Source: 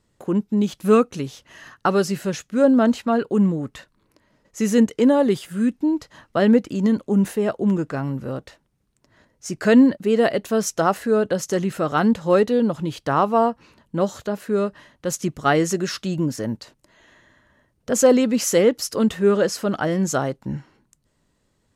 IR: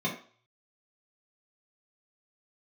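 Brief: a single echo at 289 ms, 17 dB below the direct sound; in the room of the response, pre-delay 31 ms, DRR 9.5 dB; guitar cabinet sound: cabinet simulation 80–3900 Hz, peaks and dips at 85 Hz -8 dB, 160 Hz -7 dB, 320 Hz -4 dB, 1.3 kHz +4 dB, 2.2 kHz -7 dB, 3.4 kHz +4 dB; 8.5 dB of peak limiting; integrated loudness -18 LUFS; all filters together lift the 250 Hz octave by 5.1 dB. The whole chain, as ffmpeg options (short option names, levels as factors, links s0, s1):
-filter_complex "[0:a]equalizer=f=250:t=o:g=8,alimiter=limit=0.501:level=0:latency=1,aecho=1:1:289:0.141,asplit=2[s0][s1];[1:a]atrim=start_sample=2205,adelay=31[s2];[s1][s2]afir=irnorm=-1:irlink=0,volume=0.133[s3];[s0][s3]amix=inputs=2:normalize=0,highpass=80,equalizer=f=85:t=q:w=4:g=-8,equalizer=f=160:t=q:w=4:g=-7,equalizer=f=320:t=q:w=4:g=-4,equalizer=f=1300:t=q:w=4:g=4,equalizer=f=2200:t=q:w=4:g=-7,equalizer=f=3400:t=q:w=4:g=4,lowpass=f=3900:w=0.5412,lowpass=f=3900:w=1.3066,volume=0.891"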